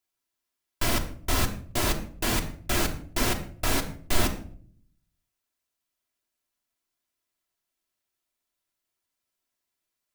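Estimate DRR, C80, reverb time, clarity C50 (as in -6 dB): 2.5 dB, 14.5 dB, 0.55 s, 11.5 dB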